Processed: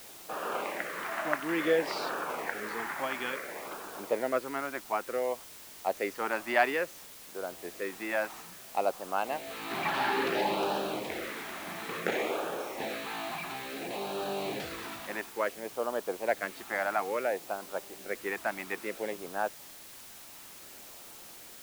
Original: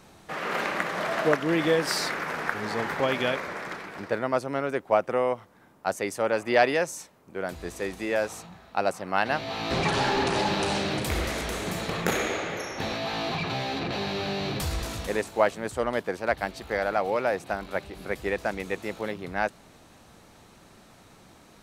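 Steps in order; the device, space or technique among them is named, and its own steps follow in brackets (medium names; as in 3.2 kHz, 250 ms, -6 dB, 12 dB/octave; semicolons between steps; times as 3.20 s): shortwave radio (band-pass 330–2700 Hz; tremolo 0.48 Hz, depth 40%; LFO notch sine 0.58 Hz 450–2100 Hz; white noise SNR 15 dB)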